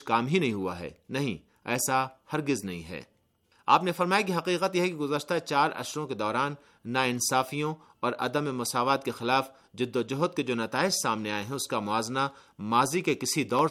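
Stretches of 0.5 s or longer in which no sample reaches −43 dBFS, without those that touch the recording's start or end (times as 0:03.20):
0:03.03–0:03.68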